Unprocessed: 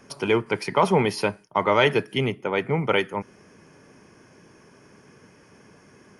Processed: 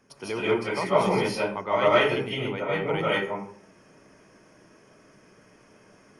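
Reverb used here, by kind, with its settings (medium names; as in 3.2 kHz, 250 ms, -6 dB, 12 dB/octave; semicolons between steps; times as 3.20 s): algorithmic reverb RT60 0.51 s, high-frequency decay 0.6×, pre-delay 115 ms, DRR -9.5 dB; trim -11.5 dB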